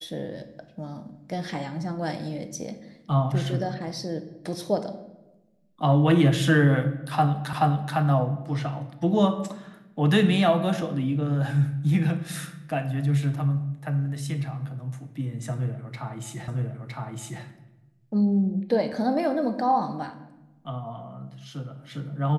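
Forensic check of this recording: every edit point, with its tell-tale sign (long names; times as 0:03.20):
0:07.53: the same again, the last 0.43 s
0:16.48: the same again, the last 0.96 s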